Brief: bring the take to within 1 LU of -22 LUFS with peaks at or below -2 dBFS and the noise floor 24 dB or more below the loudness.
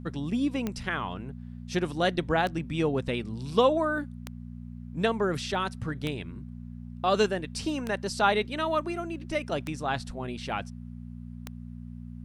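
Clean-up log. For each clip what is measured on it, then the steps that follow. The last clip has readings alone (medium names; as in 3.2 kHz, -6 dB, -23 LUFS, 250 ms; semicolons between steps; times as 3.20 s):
clicks found 7; hum 60 Hz; highest harmonic 240 Hz; hum level -39 dBFS; loudness -29.5 LUFS; peak level -10.0 dBFS; loudness target -22.0 LUFS
-> de-click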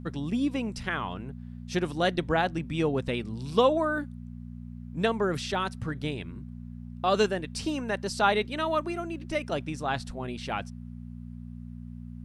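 clicks found 0; hum 60 Hz; highest harmonic 240 Hz; hum level -39 dBFS
-> de-hum 60 Hz, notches 4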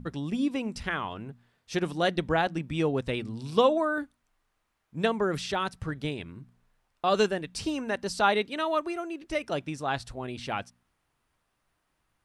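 hum not found; loudness -29.5 LUFS; peak level -10.0 dBFS; loudness target -22.0 LUFS
-> trim +7.5 dB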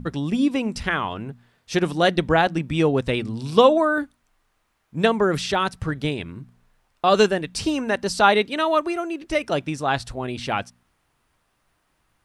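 loudness -22.0 LUFS; peak level -2.5 dBFS; noise floor -70 dBFS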